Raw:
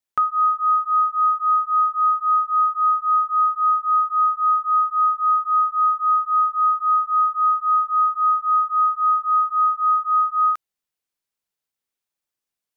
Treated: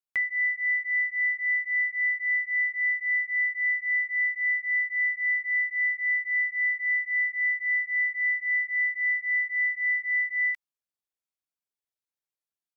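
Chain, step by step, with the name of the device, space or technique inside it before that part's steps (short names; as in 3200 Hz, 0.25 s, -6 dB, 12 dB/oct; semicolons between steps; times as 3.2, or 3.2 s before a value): chipmunk voice (pitch shift +8 st); gain -8 dB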